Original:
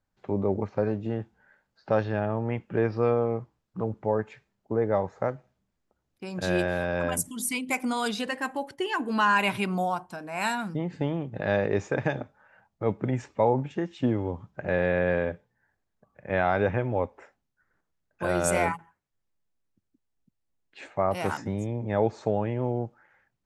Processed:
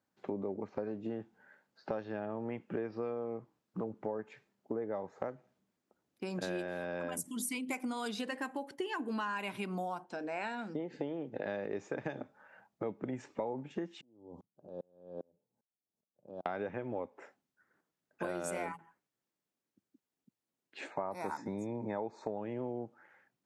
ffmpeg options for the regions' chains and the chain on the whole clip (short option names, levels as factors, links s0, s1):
-filter_complex "[0:a]asettb=1/sr,asplit=3[s0][s1][s2];[s0]atrim=end=10.044[s3];[s1]atrim=start=10.04:end=11.46,asetpts=PTS-STARTPTS,afade=t=in:d=0.004:c=qsin,afade=t=out:st=1.416:d=0.004:c=qsin,acrossover=split=2800[s4][s5];[s5]acompressor=threshold=0.00562:ratio=4:attack=1:release=60[s6];[s4][s6]amix=inputs=2:normalize=0,highpass=130,equalizer=f=180:t=q:w=4:g=-8,equalizer=f=480:t=q:w=4:g=5,equalizer=f=1100:t=q:w=4:g=-8,lowpass=f=7000:w=0.5412,lowpass=f=7000:w=1.3066[s7];[s2]atrim=start=11.456[s8];[s3][s7]acrossfade=d=0.004:c1=hsin:c2=qsin[s9];[s9][s8]acrossfade=d=0.004:c1=qsin:c2=hsin,asettb=1/sr,asplit=3[s10][s11][s12];[s10]atrim=end=14.014[s13];[s11]atrim=start=14.01:end=16.46,asetpts=PTS-STARTPTS,afade=t=in:d=0.004:c=qsin,afade=t=out:st=2.446:d=0.004:c=qsin,acompressor=threshold=0.0178:ratio=6:attack=3.2:release=140:knee=1:detection=peak,asuperstop=centerf=2000:order=4:qfactor=0.54,aeval=exprs='val(0)*pow(10,-38*if(lt(mod(-2.5*n/s,1),2*abs(-2.5)/1000),1-mod(-2.5*n/s,1)/(2*abs(-2.5)/1000),(mod(-2.5*n/s,1)-2*abs(-2.5)/1000)/(1-2*abs(-2.5)/1000))/20)':c=same[s14];[s12]atrim=start=16.456[s15];[s13][s14]acrossfade=d=0.004:c1=hsin:c2=qsin[s16];[s16][s15]acrossfade=d=0.004:c1=qsin:c2=hsin,asettb=1/sr,asplit=3[s17][s18][s19];[s17]atrim=end=20.914[s20];[s18]atrim=start=20.91:end=22.38,asetpts=PTS-STARTPTS,afade=t=in:d=0.004:c=qsin,afade=t=out:st=1.466:d=0.004:c=qsin,asuperstop=centerf=3000:order=12:qfactor=3.6,equalizer=f=930:w=5:g=9.5[s21];[s19]atrim=start=22.376[s22];[s20][s21]acrossfade=d=0.004:c1=hsin:c2=qsin[s23];[s23][s22]acrossfade=d=0.004:c1=qsin:c2=hsin,highpass=180,equalizer=f=290:t=o:w=1.4:g=4,acompressor=threshold=0.02:ratio=6,volume=0.891"